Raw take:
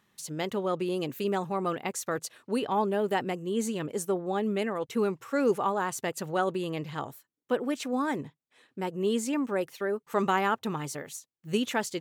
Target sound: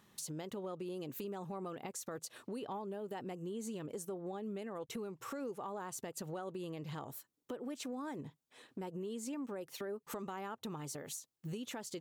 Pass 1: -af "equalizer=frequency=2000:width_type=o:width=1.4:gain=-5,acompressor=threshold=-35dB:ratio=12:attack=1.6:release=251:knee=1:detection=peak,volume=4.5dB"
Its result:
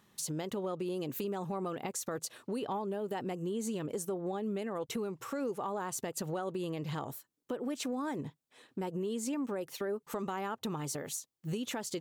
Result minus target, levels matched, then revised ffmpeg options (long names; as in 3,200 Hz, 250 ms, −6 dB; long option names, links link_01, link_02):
downward compressor: peak gain reduction −6.5 dB
-af "equalizer=frequency=2000:width_type=o:width=1.4:gain=-5,acompressor=threshold=-42dB:ratio=12:attack=1.6:release=251:knee=1:detection=peak,volume=4.5dB"